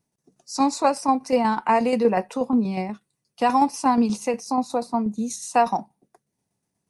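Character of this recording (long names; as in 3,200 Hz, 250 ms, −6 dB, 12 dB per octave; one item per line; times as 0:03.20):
tremolo saw down 8.3 Hz, depth 50%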